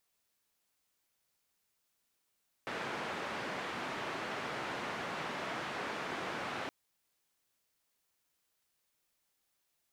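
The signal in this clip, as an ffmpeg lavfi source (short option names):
-f lavfi -i "anoisesrc=c=white:d=4.02:r=44100:seed=1,highpass=f=150,lowpass=f=1700,volume=-23.6dB"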